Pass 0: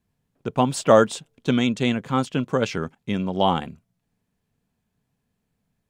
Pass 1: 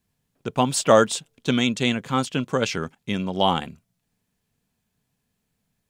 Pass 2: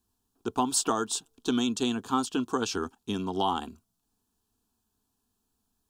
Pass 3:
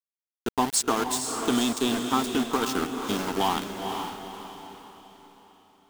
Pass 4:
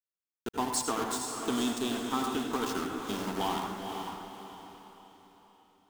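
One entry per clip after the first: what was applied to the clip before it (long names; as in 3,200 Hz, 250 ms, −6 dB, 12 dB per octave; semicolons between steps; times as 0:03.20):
high-shelf EQ 2,100 Hz +8 dB; level −1.5 dB
downward compressor 6 to 1, threshold −20 dBFS, peak gain reduction 10 dB; phaser with its sweep stopped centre 560 Hz, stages 6; level +1 dB
centre clipping without the shift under −29.5 dBFS; feedback delay with all-pass diffusion 488 ms, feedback 42%, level −5.5 dB; level +2.5 dB
convolution reverb RT60 0.70 s, pre-delay 72 ms, DRR 4 dB; level −7.5 dB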